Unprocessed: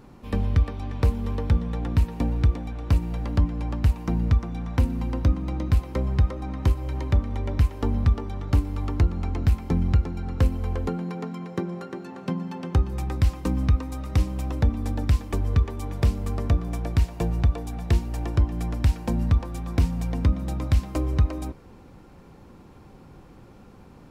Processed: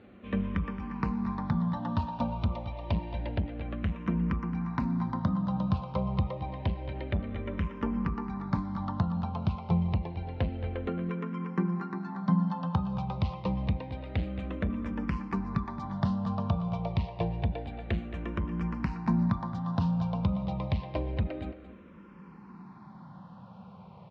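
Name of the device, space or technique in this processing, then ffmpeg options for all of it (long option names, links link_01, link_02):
barber-pole phaser into a guitar amplifier: -filter_complex "[0:a]asettb=1/sr,asplit=3[link_01][link_02][link_03];[link_01]atrim=end=1.724[link_04];[link_02]atrim=start=1.72:end=3.29,asetpts=PTS-STARTPTS,afade=type=in:duration=0.004:curve=qsin,afade=type=out:start_time=1.566:duration=0.004:curve=qsin,aecho=1:1:3.3:0.83,atrim=end_sample=69237[link_05];[link_03]atrim=start=3.286[link_06];[link_04][link_05]acrossfade=duration=0.004:curve1=hsin:curve2=qsin[link_07];[link_07][link_06]acrossfade=duration=0.004:curve1=qsin:curve2=hsin,asplit=2[link_08][link_09];[link_09]afreqshift=-0.28[link_10];[link_08][link_10]amix=inputs=2:normalize=1,asoftclip=type=tanh:threshold=-17dB,highpass=100,equalizer=frequency=190:width_type=q:width=4:gain=9,equalizer=frequency=290:width_type=q:width=4:gain=-6,equalizer=frequency=420:width_type=q:width=4:gain=-4,equalizer=frequency=630:width_type=q:width=4:gain=3,equalizer=frequency=1000:width_type=q:width=4:gain=7,lowpass=frequency=4000:width=0.5412,lowpass=frequency=4000:width=1.3066,asplit=2[link_11][link_12];[link_12]adelay=221.6,volume=-13dB,highshelf=frequency=4000:gain=-4.99[link_13];[link_11][link_13]amix=inputs=2:normalize=0"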